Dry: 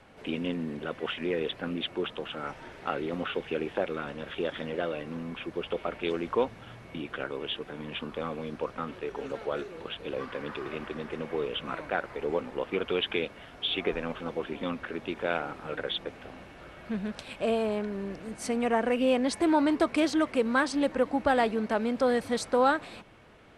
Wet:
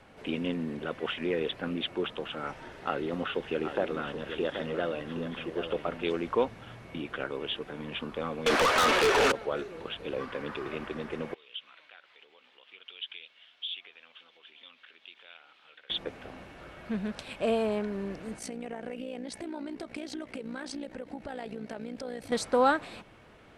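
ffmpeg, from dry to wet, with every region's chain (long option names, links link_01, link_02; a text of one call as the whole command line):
ffmpeg -i in.wav -filter_complex "[0:a]asettb=1/sr,asplit=3[link_01][link_02][link_03];[link_01]atrim=end=2.654[link_04];[link_02]atrim=start=2.65:end=6.04,asetpts=PTS-STARTPTS,afade=type=in:duration=0.004:curve=qsin,afade=type=out:start_time=3.386:duration=0.004:curve=qsin,bandreject=frequency=2300:width=12,aecho=1:1:778:0.376,atrim=end_sample=149499[link_05];[link_03]atrim=start=6.036[link_06];[link_04][link_05]acrossfade=duration=0.004:curve1=hsin:curve2=qsin[link_07];[link_07][link_06]acrossfade=duration=0.004:curve1=qsin:curve2=hsin,asettb=1/sr,asplit=3[link_08][link_09][link_10];[link_08]atrim=end=8.464[link_11];[link_09]atrim=start=8.46:end=9.32,asetpts=PTS-STARTPTS,afade=type=in:duration=0.004:curve=qsin,afade=type=out:start_time=0.856:duration=0.004:curve=qsin,highpass=410,asplit=2[link_12][link_13];[link_13]highpass=frequency=720:poles=1,volume=25dB,asoftclip=type=tanh:threshold=-20.5dB[link_14];[link_12][link_14]amix=inputs=2:normalize=0,lowpass=frequency=7500:poles=1,volume=-6dB,aeval=exprs='0.0944*sin(PI/2*2.24*val(0)/0.0944)':channel_layout=same[link_15];[link_10]atrim=start=9.316[link_16];[link_11][link_15]acrossfade=duration=0.004:curve1=hsin:curve2=qsin[link_17];[link_17][link_16]acrossfade=duration=0.004:curve1=qsin:curve2=hsin,asettb=1/sr,asplit=3[link_18][link_19][link_20];[link_18]atrim=end=11.344[link_21];[link_19]atrim=start=11.34:end=15.9,asetpts=PTS-STARTPTS,afade=type=in:duration=0.004:curve=qsin,afade=type=out:start_time=4.556:duration=0.004:curve=qsin,acompressor=threshold=-35dB:ratio=2:attack=3.2:release=140:knee=1:detection=peak,bandpass=frequency=3300:width_type=q:width=3.2[link_22];[link_20]atrim=start=15.896[link_23];[link_21][link_22]acrossfade=duration=0.004:curve1=hsin:curve2=qsin[link_24];[link_24][link_23]acrossfade=duration=0.004:curve1=qsin:curve2=hsin,asettb=1/sr,asplit=3[link_25][link_26][link_27];[link_25]atrim=end=18.394[link_28];[link_26]atrim=start=18.39:end=22.32,asetpts=PTS-STARTPTS,afade=type=in:duration=0.004:curve=qsin,afade=type=out:start_time=3.926:duration=0.004:curve=qsin,equalizer=frequency=1100:width=2.5:gain=-8,acompressor=threshold=-32dB:ratio=12:attack=3.2:release=140:knee=1:detection=peak,tremolo=f=59:d=0.71[link_29];[link_27]atrim=start=22.316[link_30];[link_28][link_29]acrossfade=duration=0.004:curve1=hsin:curve2=qsin[link_31];[link_31][link_30]acrossfade=duration=0.004:curve1=qsin:curve2=hsin" out.wav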